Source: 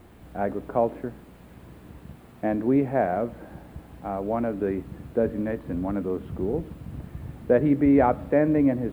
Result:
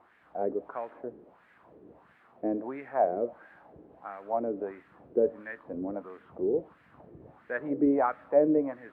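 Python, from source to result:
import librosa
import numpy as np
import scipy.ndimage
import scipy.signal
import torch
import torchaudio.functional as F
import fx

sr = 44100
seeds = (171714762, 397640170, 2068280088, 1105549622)

y = fx.wah_lfo(x, sr, hz=1.5, low_hz=380.0, high_hz=1800.0, q=2.9)
y = y * 10.0 ** (2.5 / 20.0)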